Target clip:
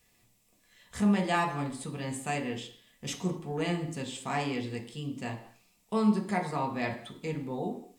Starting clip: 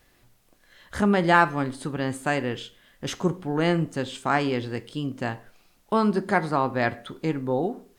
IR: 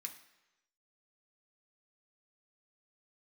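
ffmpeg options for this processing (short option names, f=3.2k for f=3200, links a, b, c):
-filter_complex "[0:a]equalizer=f=1.5k:t=o:w=0.63:g=-12[a];[1:a]atrim=start_sample=2205,afade=t=out:st=0.31:d=0.01,atrim=end_sample=14112[b];[a][b]afir=irnorm=-1:irlink=0,volume=1dB"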